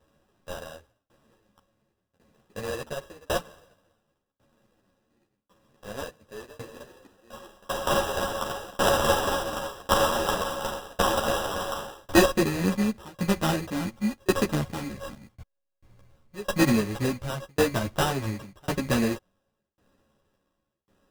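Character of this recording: a buzz of ramps at a fixed pitch in blocks of 16 samples; tremolo saw down 0.91 Hz, depth 100%; aliases and images of a low sample rate 2200 Hz, jitter 0%; a shimmering, thickened sound

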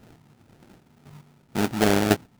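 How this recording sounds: phasing stages 4, 3.3 Hz, lowest notch 660–1400 Hz; chopped level 0.95 Hz, depth 65%, duty 15%; aliases and images of a low sample rate 1100 Hz, jitter 20%

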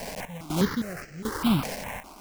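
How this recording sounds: a quantiser's noise floor 6-bit, dither triangular; random-step tremolo 4 Hz, depth 85%; aliases and images of a low sample rate 3600 Hz, jitter 20%; notches that jump at a steady rate 4.9 Hz 340–3600 Hz

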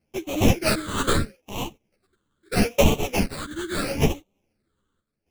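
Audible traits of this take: aliases and images of a low sample rate 1900 Hz, jitter 20%; phasing stages 8, 0.77 Hz, lowest notch 710–1500 Hz; chopped level 0.57 Hz, depth 60%, duty 85%; a shimmering, thickened sound

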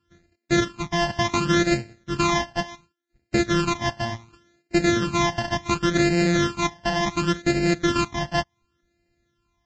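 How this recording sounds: a buzz of ramps at a fixed pitch in blocks of 128 samples; phasing stages 12, 0.69 Hz, lowest notch 400–1100 Hz; Vorbis

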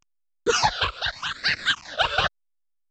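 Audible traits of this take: a quantiser's noise floor 6-bit, dither none; phasing stages 8, 0.83 Hz, lowest notch 240–1000 Hz; random-step tremolo; A-law

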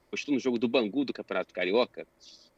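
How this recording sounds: noise floor -68 dBFS; spectral tilt -3.0 dB/oct

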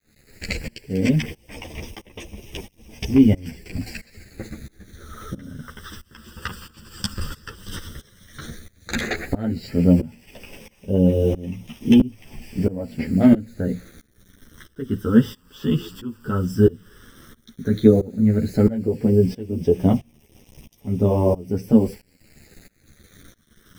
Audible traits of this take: a quantiser's noise floor 8-bit, dither none; phasing stages 12, 0.11 Hz, lowest notch 700–1400 Hz; tremolo saw up 1.5 Hz, depth 95%; a shimmering, thickened sound

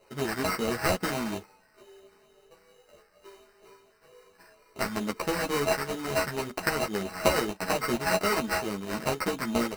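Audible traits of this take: a buzz of ramps at a fixed pitch in blocks of 16 samples; phasing stages 4, 2.2 Hz, lowest notch 640–2900 Hz; aliases and images of a low sample rate 3400 Hz, jitter 0%; a shimmering, thickened sound

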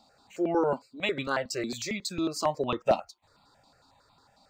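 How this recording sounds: notches that jump at a steady rate 11 Hz 440–1700 Hz

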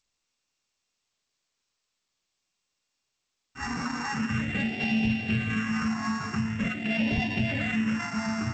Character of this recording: a buzz of ramps at a fixed pitch in blocks of 16 samples; phasing stages 4, 0.45 Hz, lowest notch 540–1200 Hz; G.722

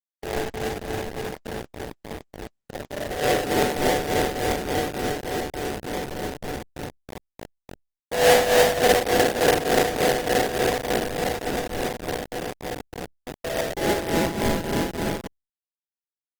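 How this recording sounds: aliases and images of a low sample rate 1200 Hz, jitter 20%; tremolo triangle 3.4 Hz, depth 80%; a quantiser's noise floor 6-bit, dither none; Opus

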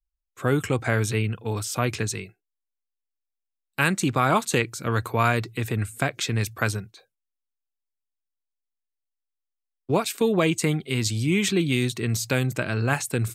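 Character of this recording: noise floor -84 dBFS; spectral tilt -5.0 dB/oct

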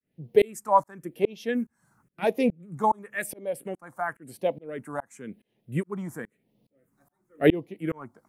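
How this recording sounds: tremolo saw up 2.4 Hz, depth 100%; phasing stages 4, 0.95 Hz, lowest notch 450–1400 Hz

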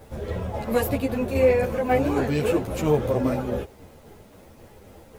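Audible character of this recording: tremolo saw down 3.7 Hz, depth 40%; a quantiser's noise floor 10-bit, dither none; a shimmering, thickened sound

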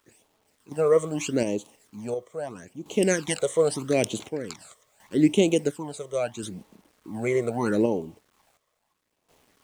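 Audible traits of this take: phasing stages 12, 0.78 Hz, lowest notch 260–1700 Hz; a quantiser's noise floor 10-bit, dither none; random-step tremolo 1.4 Hz, depth 85%

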